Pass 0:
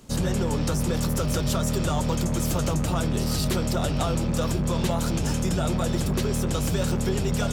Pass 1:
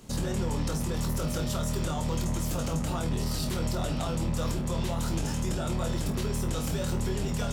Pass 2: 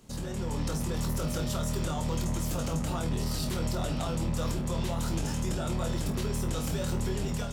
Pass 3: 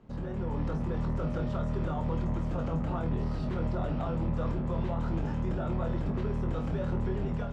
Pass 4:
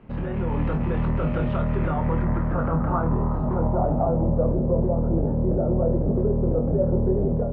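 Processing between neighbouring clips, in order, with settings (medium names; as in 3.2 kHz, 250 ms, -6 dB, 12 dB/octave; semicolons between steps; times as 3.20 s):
peak limiter -22 dBFS, peak gain reduction 9.5 dB; on a send: flutter echo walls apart 4.2 m, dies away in 0.23 s; on the sum: trim -1 dB
level rider gain up to 5 dB; trim -6 dB
low-pass 1.6 kHz 12 dB/octave
treble shelf 3.9 kHz -9.5 dB; low-pass sweep 2.6 kHz -> 530 Hz, 1.58–4.63 s; trim +7.5 dB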